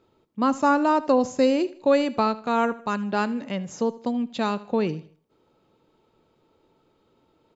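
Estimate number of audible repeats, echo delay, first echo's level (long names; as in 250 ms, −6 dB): 2, 78 ms, −18.5 dB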